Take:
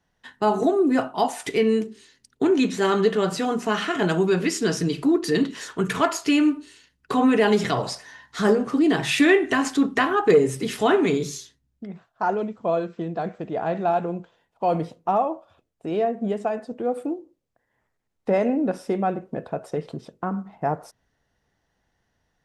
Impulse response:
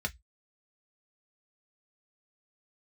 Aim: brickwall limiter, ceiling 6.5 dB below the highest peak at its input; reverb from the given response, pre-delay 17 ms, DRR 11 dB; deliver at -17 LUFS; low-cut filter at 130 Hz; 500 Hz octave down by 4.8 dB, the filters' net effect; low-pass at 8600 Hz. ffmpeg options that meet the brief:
-filter_complex "[0:a]highpass=130,lowpass=8.6k,equalizer=f=500:t=o:g=-6.5,alimiter=limit=-14.5dB:level=0:latency=1,asplit=2[a][b];[1:a]atrim=start_sample=2205,adelay=17[c];[b][c]afir=irnorm=-1:irlink=0,volume=-15dB[d];[a][d]amix=inputs=2:normalize=0,volume=9.5dB"

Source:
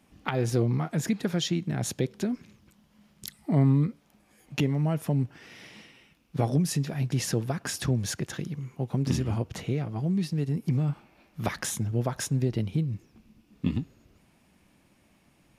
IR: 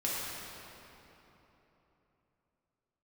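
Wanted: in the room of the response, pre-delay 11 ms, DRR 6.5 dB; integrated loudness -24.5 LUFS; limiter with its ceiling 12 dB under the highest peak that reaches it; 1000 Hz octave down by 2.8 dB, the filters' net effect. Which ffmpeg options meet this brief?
-filter_complex "[0:a]equalizer=f=1k:t=o:g=-4,alimiter=limit=-24dB:level=0:latency=1,asplit=2[a][b];[1:a]atrim=start_sample=2205,adelay=11[c];[b][c]afir=irnorm=-1:irlink=0,volume=-13.5dB[d];[a][d]amix=inputs=2:normalize=0,volume=9dB"

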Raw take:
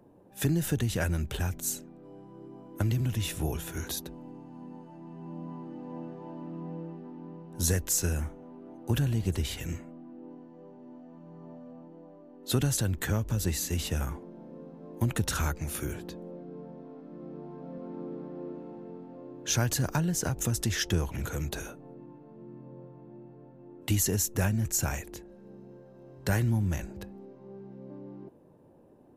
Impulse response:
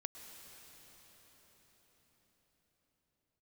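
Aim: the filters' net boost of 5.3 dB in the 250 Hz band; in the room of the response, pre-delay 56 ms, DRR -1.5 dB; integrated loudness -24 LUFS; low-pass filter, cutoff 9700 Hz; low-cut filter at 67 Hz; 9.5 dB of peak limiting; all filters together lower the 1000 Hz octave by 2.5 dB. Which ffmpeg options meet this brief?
-filter_complex "[0:a]highpass=67,lowpass=9.7k,equalizer=f=250:t=o:g=7.5,equalizer=f=1k:t=o:g=-4,alimiter=limit=-20.5dB:level=0:latency=1,asplit=2[a][b];[1:a]atrim=start_sample=2205,adelay=56[c];[b][c]afir=irnorm=-1:irlink=0,volume=4.5dB[d];[a][d]amix=inputs=2:normalize=0,volume=6dB"

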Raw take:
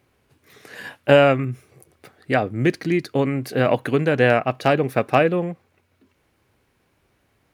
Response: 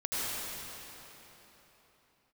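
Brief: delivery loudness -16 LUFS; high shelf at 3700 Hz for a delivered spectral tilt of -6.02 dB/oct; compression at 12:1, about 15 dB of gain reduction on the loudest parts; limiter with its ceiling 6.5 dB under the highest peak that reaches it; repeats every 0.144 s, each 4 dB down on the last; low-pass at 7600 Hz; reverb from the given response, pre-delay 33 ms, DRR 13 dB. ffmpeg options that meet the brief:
-filter_complex "[0:a]lowpass=7.6k,highshelf=f=3.7k:g=-3.5,acompressor=threshold=-24dB:ratio=12,alimiter=limit=-19.5dB:level=0:latency=1,aecho=1:1:144|288|432|576|720|864|1008|1152|1296:0.631|0.398|0.25|0.158|0.0994|0.0626|0.0394|0.0249|0.0157,asplit=2[a][b];[1:a]atrim=start_sample=2205,adelay=33[c];[b][c]afir=irnorm=-1:irlink=0,volume=-21dB[d];[a][d]amix=inputs=2:normalize=0,volume=13.5dB"

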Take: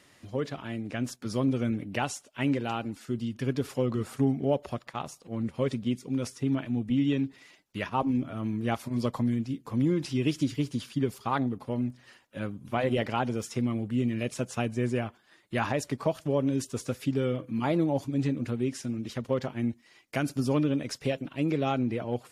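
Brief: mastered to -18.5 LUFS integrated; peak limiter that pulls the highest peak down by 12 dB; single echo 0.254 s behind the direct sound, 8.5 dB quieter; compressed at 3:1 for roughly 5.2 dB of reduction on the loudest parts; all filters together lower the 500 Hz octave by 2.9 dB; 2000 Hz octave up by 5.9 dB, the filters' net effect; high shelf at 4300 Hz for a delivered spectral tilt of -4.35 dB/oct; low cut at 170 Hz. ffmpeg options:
-af "highpass=170,equalizer=f=500:t=o:g=-4,equalizer=f=2k:t=o:g=6,highshelf=f=4.3k:g=7.5,acompressor=threshold=-30dB:ratio=3,alimiter=level_in=3.5dB:limit=-24dB:level=0:latency=1,volume=-3.5dB,aecho=1:1:254:0.376,volume=18.5dB"

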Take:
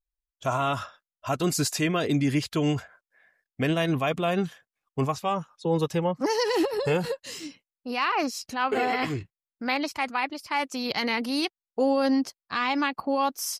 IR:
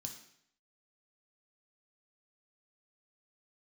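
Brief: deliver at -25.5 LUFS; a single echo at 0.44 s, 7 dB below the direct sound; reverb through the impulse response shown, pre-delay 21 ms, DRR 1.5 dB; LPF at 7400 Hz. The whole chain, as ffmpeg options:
-filter_complex "[0:a]lowpass=7.4k,aecho=1:1:440:0.447,asplit=2[a][b];[1:a]atrim=start_sample=2205,adelay=21[c];[b][c]afir=irnorm=-1:irlink=0,volume=3.5dB[d];[a][d]amix=inputs=2:normalize=0,volume=-2.5dB"

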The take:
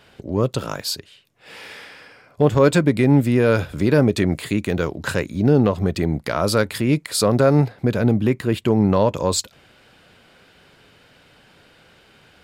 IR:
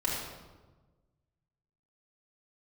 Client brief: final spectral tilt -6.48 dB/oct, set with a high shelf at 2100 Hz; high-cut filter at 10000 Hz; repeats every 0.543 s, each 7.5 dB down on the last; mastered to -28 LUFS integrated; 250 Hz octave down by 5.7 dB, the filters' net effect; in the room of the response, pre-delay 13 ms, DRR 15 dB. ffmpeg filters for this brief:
-filter_complex "[0:a]lowpass=10k,equalizer=f=250:t=o:g=-7.5,highshelf=f=2.1k:g=-6,aecho=1:1:543|1086|1629|2172|2715:0.422|0.177|0.0744|0.0312|0.0131,asplit=2[a][b];[1:a]atrim=start_sample=2205,adelay=13[c];[b][c]afir=irnorm=-1:irlink=0,volume=-22.5dB[d];[a][d]amix=inputs=2:normalize=0,volume=-6.5dB"

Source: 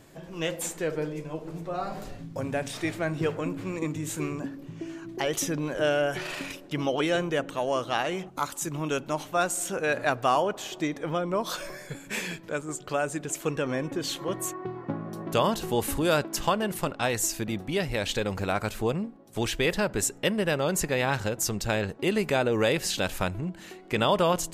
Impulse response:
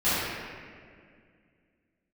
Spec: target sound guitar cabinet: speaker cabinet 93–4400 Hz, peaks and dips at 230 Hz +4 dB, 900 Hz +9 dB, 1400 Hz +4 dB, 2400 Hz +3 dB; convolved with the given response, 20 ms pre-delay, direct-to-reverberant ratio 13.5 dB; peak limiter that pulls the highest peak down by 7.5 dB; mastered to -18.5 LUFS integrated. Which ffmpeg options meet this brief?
-filter_complex "[0:a]alimiter=limit=-17.5dB:level=0:latency=1,asplit=2[a][b];[1:a]atrim=start_sample=2205,adelay=20[c];[b][c]afir=irnorm=-1:irlink=0,volume=-29.5dB[d];[a][d]amix=inputs=2:normalize=0,highpass=93,equalizer=f=230:t=q:w=4:g=4,equalizer=f=900:t=q:w=4:g=9,equalizer=f=1.4k:t=q:w=4:g=4,equalizer=f=2.4k:t=q:w=4:g=3,lowpass=f=4.4k:w=0.5412,lowpass=f=4.4k:w=1.3066,volume=10.5dB"

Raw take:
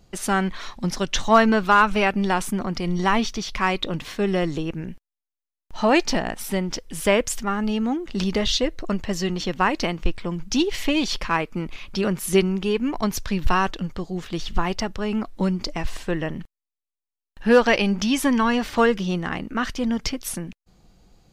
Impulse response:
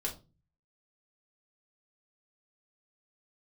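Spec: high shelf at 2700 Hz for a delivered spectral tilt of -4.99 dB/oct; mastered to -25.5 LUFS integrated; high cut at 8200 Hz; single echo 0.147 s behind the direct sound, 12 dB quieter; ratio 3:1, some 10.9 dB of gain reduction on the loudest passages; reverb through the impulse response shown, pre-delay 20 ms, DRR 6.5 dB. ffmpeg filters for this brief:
-filter_complex "[0:a]lowpass=8.2k,highshelf=f=2.7k:g=-8,acompressor=threshold=-26dB:ratio=3,aecho=1:1:147:0.251,asplit=2[a][b];[1:a]atrim=start_sample=2205,adelay=20[c];[b][c]afir=irnorm=-1:irlink=0,volume=-8.5dB[d];[a][d]amix=inputs=2:normalize=0,volume=3.5dB"

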